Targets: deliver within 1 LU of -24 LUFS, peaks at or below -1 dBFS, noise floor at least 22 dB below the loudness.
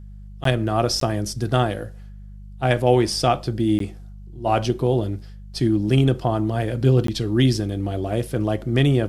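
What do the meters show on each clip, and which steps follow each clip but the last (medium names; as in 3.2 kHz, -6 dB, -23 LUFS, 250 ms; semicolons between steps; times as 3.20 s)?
dropouts 4; longest dropout 13 ms; hum 50 Hz; highest harmonic 200 Hz; hum level -36 dBFS; loudness -21.5 LUFS; peak level -4.0 dBFS; loudness target -24.0 LUFS
-> interpolate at 0.44/1.00/3.79/7.07 s, 13 ms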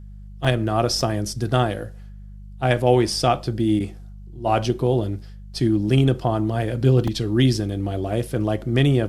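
dropouts 0; hum 50 Hz; highest harmonic 200 Hz; hum level -36 dBFS
-> de-hum 50 Hz, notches 4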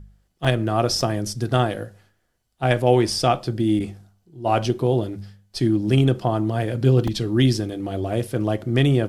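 hum not found; loudness -21.5 LUFS; peak level -4.0 dBFS; loudness target -24.0 LUFS
-> trim -2.5 dB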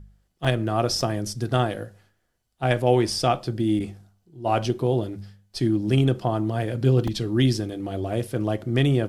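loudness -24.0 LUFS; peak level -6.5 dBFS; noise floor -72 dBFS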